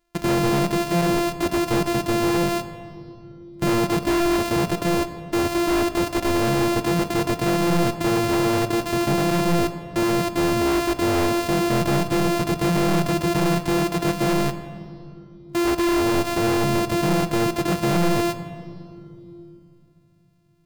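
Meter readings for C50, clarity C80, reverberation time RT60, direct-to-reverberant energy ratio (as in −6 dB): 12.0 dB, 13.0 dB, 2.8 s, 9.5 dB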